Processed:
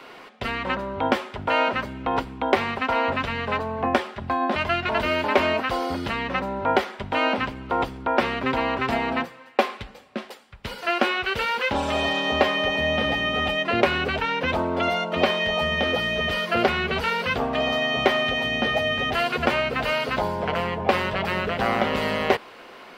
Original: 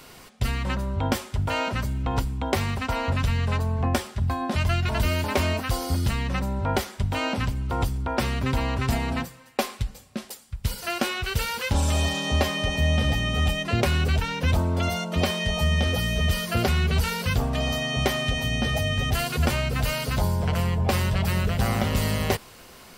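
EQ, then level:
three-way crossover with the lows and the highs turned down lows −21 dB, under 250 Hz, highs −22 dB, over 3,500 Hz
+6.5 dB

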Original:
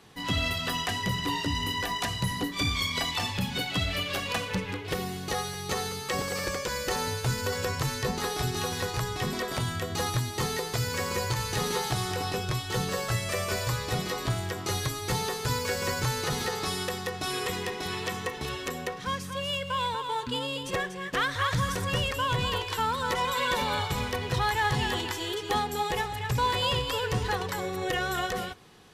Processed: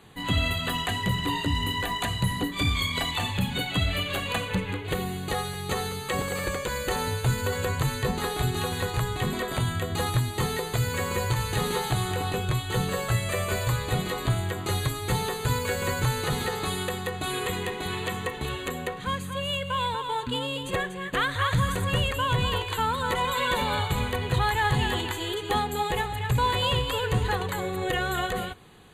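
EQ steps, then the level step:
Butterworth band-reject 5,400 Hz, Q 2.5
low-shelf EQ 130 Hz +5.5 dB
+1.5 dB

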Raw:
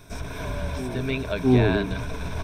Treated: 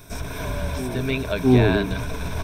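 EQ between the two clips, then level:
high-shelf EQ 11,000 Hz +12 dB
+2.5 dB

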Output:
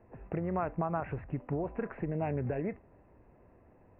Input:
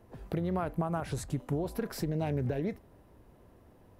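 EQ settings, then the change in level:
dynamic equaliser 1,200 Hz, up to +4 dB, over −47 dBFS, Q 1.3
Chebyshev low-pass with heavy ripple 2,700 Hz, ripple 3 dB
0.0 dB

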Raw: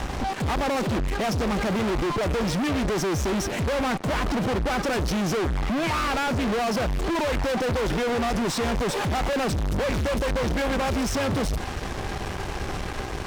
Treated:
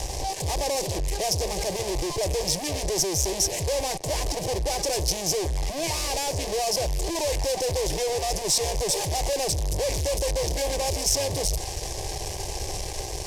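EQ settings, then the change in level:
flat-topped bell 7,800 Hz +11.5 dB
phaser with its sweep stopped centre 560 Hz, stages 4
0.0 dB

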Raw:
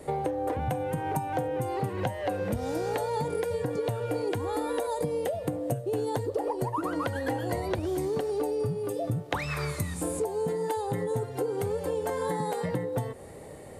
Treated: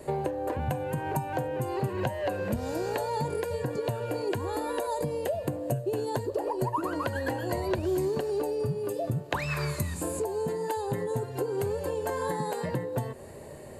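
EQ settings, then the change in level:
EQ curve with evenly spaced ripples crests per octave 1.4, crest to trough 6 dB
0.0 dB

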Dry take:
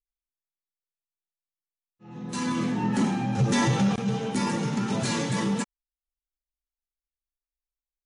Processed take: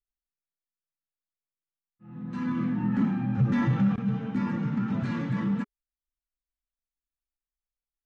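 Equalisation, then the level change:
low-pass filter 1,400 Hz 12 dB per octave
flat-topped bell 590 Hz −9.5 dB
notch filter 410 Hz, Q 12
0.0 dB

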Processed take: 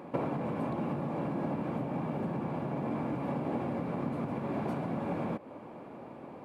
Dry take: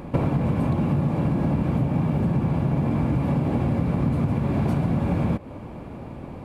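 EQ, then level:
Bessel high-pass filter 300 Hz, order 2
low-shelf EQ 430 Hz −4 dB
high-shelf EQ 2,100 Hz −10.5 dB
−2.0 dB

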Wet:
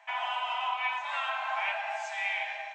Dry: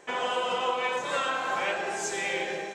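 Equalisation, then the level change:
Chebyshev high-pass with heavy ripple 630 Hz, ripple 9 dB
head-to-tape spacing loss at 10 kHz 22 dB
+6.5 dB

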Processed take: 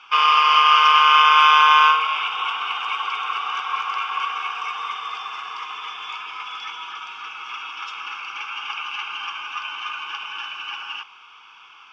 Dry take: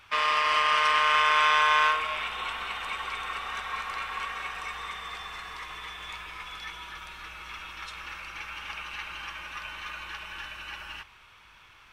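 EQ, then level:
loudspeaker in its box 400–5,500 Hz, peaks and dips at 490 Hz +9 dB, 790 Hz +5 dB, 1,200 Hz +4 dB, 2,000 Hz +3 dB, 3,000 Hz +4 dB, 4,500 Hz +6 dB
phaser with its sweep stopped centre 2,800 Hz, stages 8
+7.0 dB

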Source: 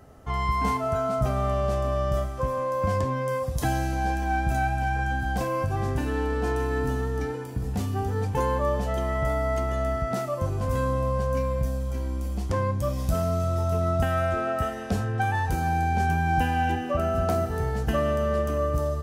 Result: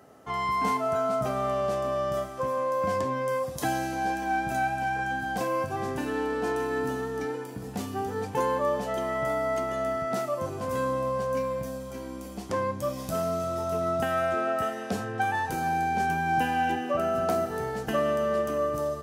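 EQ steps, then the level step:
high-pass filter 210 Hz 12 dB per octave
0.0 dB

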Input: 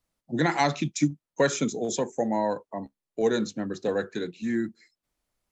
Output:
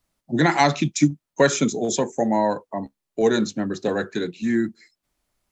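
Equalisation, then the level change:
notch filter 490 Hz, Q 12
+6.0 dB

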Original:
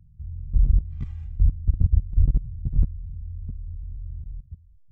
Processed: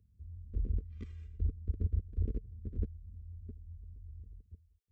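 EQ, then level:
high-pass filter 87 Hz 12 dB per octave
parametric band 440 Hz +11.5 dB 0.27 octaves
phaser with its sweep stopped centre 340 Hz, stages 4
−3.0 dB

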